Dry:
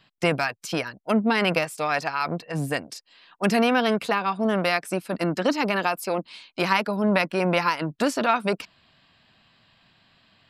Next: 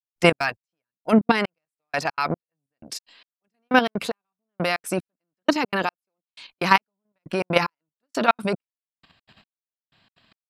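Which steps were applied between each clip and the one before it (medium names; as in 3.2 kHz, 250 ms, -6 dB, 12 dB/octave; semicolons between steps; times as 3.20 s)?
level held to a coarse grid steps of 10 dB; trance gate "..xx.xx...." 186 bpm -60 dB; trim +7.5 dB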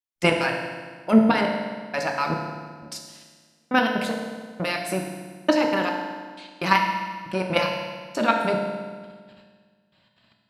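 reverberation RT60 1.6 s, pre-delay 3 ms, DRR 0.5 dB; trim -3 dB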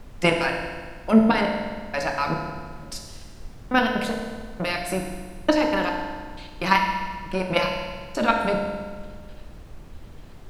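added noise brown -39 dBFS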